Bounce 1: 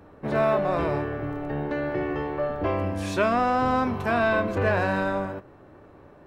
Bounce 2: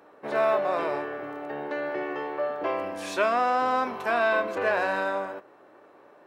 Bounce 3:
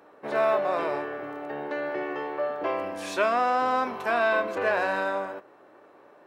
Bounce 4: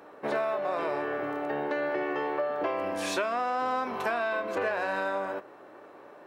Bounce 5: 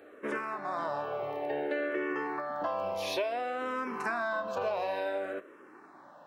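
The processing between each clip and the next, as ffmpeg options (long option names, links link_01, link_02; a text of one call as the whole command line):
ffmpeg -i in.wav -af "highpass=430" out.wav
ffmpeg -i in.wav -af anull out.wav
ffmpeg -i in.wav -af "acompressor=threshold=-30dB:ratio=10,volume=4dB" out.wav
ffmpeg -i in.wav -filter_complex "[0:a]asplit=2[link_01][link_02];[link_02]afreqshift=-0.57[link_03];[link_01][link_03]amix=inputs=2:normalize=1" out.wav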